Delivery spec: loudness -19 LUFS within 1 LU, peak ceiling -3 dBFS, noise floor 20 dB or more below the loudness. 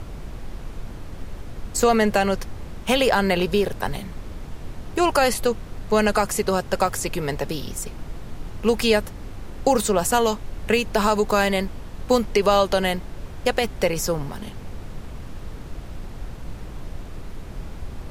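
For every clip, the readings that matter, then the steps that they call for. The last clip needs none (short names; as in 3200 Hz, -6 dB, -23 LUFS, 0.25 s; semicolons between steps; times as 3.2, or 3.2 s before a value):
dropouts 1; longest dropout 1.6 ms; noise floor -37 dBFS; noise floor target -42 dBFS; loudness -22.0 LUFS; peak -4.5 dBFS; loudness target -19.0 LUFS
-> interpolate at 6.88, 1.6 ms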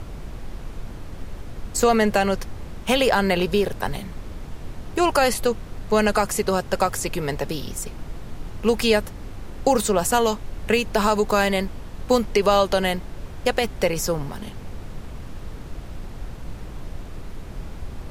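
dropouts 0; noise floor -37 dBFS; noise floor target -42 dBFS
-> noise print and reduce 6 dB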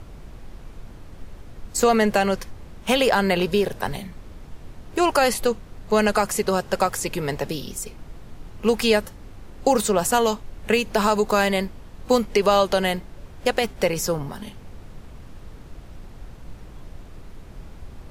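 noise floor -43 dBFS; loudness -22.0 LUFS; peak -5.0 dBFS; loudness target -19.0 LUFS
-> gain +3 dB; limiter -3 dBFS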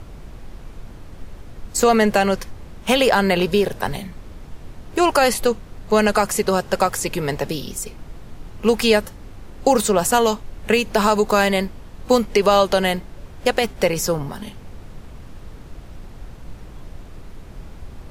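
loudness -19.0 LUFS; peak -3.0 dBFS; noise floor -40 dBFS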